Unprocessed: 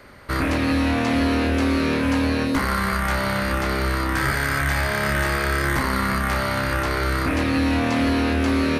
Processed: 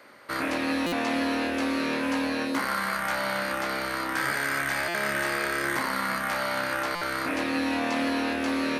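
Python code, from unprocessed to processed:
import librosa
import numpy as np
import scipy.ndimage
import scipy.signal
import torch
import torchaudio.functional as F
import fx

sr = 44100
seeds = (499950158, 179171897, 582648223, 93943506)

y = scipy.signal.sosfilt(scipy.signal.butter(2, 290.0, 'highpass', fs=sr, output='sos'), x)
y = fx.notch(y, sr, hz=400.0, q=12.0)
y = fx.doubler(y, sr, ms=14.0, db=-13.0)
y = fx.buffer_glitch(y, sr, at_s=(0.86, 4.88, 6.95), block=256, repeats=10)
y = F.gain(torch.from_numpy(y), -4.0).numpy()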